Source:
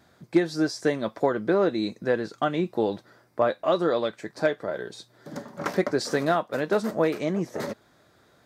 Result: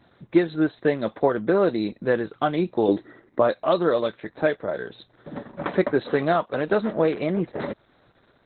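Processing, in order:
0:02.88–0:03.40: hollow resonant body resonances 310/1,900 Hz, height 13 dB, ringing for 25 ms
level +3 dB
Opus 8 kbit/s 48,000 Hz

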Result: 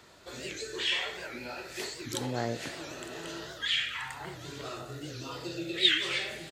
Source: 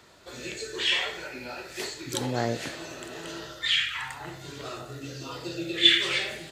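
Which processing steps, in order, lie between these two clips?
in parallel at −2 dB: downward compressor, threshold −37 dBFS, peak gain reduction 22 dB
on the sum: slap from a distant wall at 240 metres, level −27 dB
wow of a warped record 78 rpm, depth 160 cents
level −6 dB

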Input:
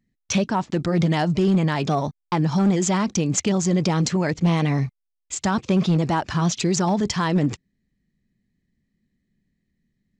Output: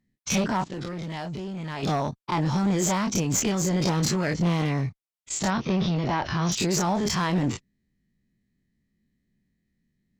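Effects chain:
every bin's largest magnitude spread in time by 60 ms
asymmetric clip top −17.5 dBFS
0:00.64–0:01.83: output level in coarse steps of 14 dB
0:05.50–0:06.52: elliptic low-pass filter 5,900 Hz, stop band 40 dB
level −5 dB

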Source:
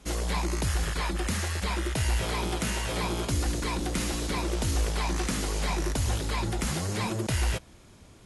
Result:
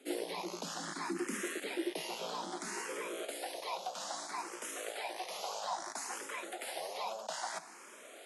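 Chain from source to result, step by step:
Butterworth high-pass 160 Hz 96 dB per octave
reversed playback
downward compressor 6 to 1, threshold −44 dBFS, peak gain reduction 16.5 dB
reversed playback
high-pass filter sweep 300 Hz → 660 Hz, 0:02.11–0:03.49
frequency shifter mixed with the dry sound +0.61 Hz
level +7.5 dB

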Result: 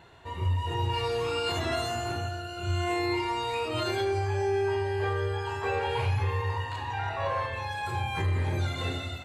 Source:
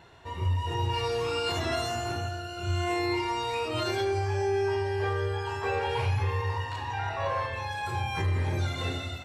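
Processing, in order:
notch filter 5,500 Hz, Q 6.4

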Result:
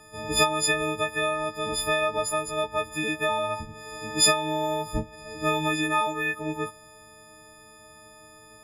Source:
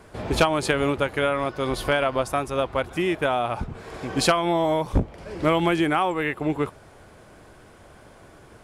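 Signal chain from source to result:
every partial snapped to a pitch grid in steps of 6 semitones
level −6.5 dB

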